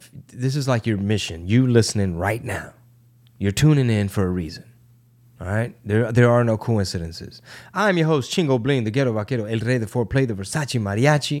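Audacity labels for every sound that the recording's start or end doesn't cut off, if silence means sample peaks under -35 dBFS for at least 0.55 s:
3.410000	4.600000	sound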